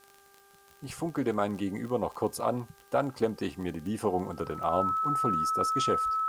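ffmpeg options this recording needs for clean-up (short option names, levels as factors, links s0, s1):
-af "adeclick=t=4,bandreject=f=396.8:t=h:w=4,bandreject=f=793.6:t=h:w=4,bandreject=f=1190.4:t=h:w=4,bandreject=f=1587.2:t=h:w=4,bandreject=f=1300:w=30,agate=range=0.0891:threshold=0.00316"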